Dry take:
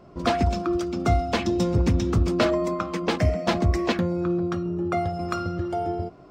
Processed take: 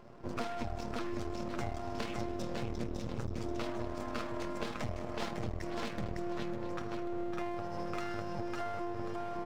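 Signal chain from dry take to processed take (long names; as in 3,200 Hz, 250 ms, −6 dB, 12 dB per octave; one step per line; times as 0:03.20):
multi-tap delay 137/370/529/724 ms −14.5/−4/−19.5/−14.5 dB
time stretch by overlap-add 1.5×, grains 52 ms
mains-hum notches 50/100 Hz
half-wave rectification
downward compressor 6 to 1, threshold −33 dBFS, peak gain reduction 15.5 dB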